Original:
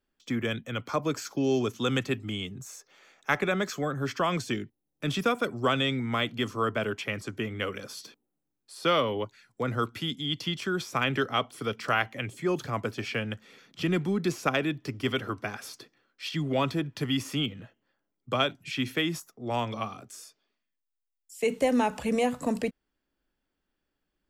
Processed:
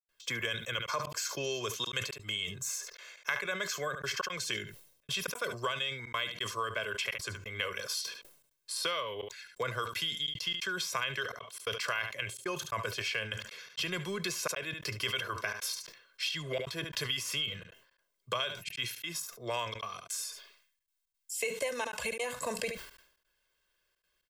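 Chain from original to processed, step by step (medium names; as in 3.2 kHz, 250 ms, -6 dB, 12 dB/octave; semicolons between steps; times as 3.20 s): tilt shelf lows -8.5 dB, about 730 Hz; comb 1.9 ms, depth 74%; compression 6:1, threshold -32 dBFS, peak gain reduction 17.5 dB; trance gate ".xxxxxxxx.xx" 171 bpm -60 dB; delay 72 ms -19.5 dB; decay stretcher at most 85 dB/s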